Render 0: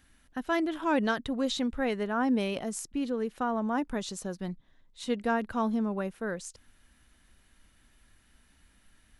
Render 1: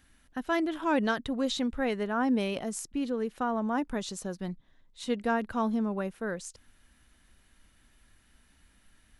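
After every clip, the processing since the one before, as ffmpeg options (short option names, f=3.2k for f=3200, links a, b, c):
-af anull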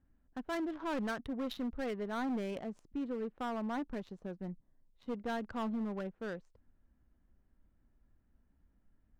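-af "adynamicsmooth=sensitivity=5:basefreq=740,volume=26.5dB,asoftclip=hard,volume=-26.5dB,volume=-6dB"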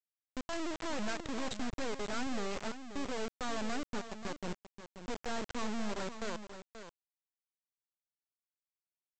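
-af "aresample=16000,acrusher=bits=4:dc=4:mix=0:aa=0.000001,aresample=44100,aecho=1:1:532:0.299,volume=4dB"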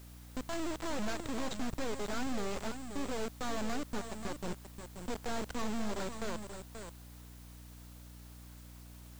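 -filter_complex "[0:a]aeval=exprs='val(0)+0.5*0.00501*sgn(val(0))':c=same,aeval=exprs='val(0)+0.00282*(sin(2*PI*60*n/s)+sin(2*PI*2*60*n/s)/2+sin(2*PI*3*60*n/s)/3+sin(2*PI*4*60*n/s)/4+sin(2*PI*5*60*n/s)/5)':c=same,asplit=2[a][b];[b]acrusher=samples=15:mix=1:aa=0.000001,volume=-8dB[c];[a][c]amix=inputs=2:normalize=0,volume=-2.5dB"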